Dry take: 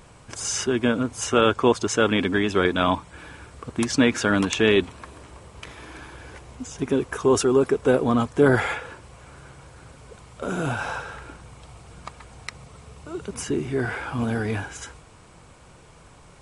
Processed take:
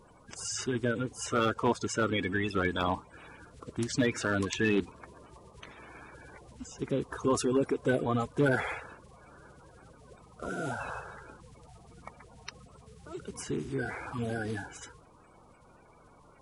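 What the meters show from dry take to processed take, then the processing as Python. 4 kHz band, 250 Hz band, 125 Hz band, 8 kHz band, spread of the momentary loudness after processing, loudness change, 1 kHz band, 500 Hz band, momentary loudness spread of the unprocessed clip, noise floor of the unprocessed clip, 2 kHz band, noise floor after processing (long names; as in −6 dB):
−10.5 dB, −9.0 dB, −6.5 dB, −9.0 dB, 22 LU, −9.0 dB, −7.5 dB, −10.0 dB, 22 LU, −50 dBFS, −7.5 dB, −58 dBFS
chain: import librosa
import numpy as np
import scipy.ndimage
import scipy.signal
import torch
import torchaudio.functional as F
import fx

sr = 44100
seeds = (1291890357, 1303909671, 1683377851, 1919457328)

y = fx.spec_quant(x, sr, step_db=30)
y = np.clip(y, -10.0 ** (-10.5 / 20.0), 10.0 ** (-10.5 / 20.0))
y = y * 10.0 ** (-8.0 / 20.0)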